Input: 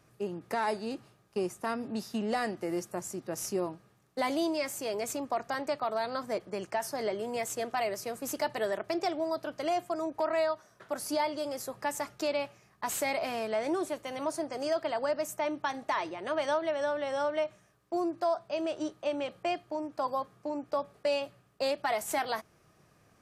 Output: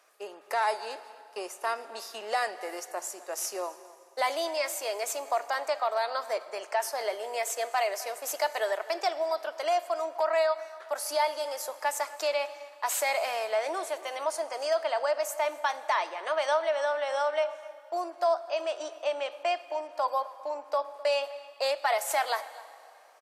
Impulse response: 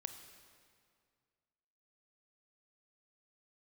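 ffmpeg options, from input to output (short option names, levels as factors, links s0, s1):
-filter_complex "[0:a]highpass=f=540:w=0.5412,highpass=f=540:w=1.3066,asplit=2[s0][s1];[s1]adelay=256.6,volume=0.112,highshelf=f=4000:g=-5.77[s2];[s0][s2]amix=inputs=2:normalize=0,asplit=2[s3][s4];[1:a]atrim=start_sample=2205,asetrate=33075,aresample=44100[s5];[s4][s5]afir=irnorm=-1:irlink=0,volume=0.794[s6];[s3][s6]amix=inputs=2:normalize=0"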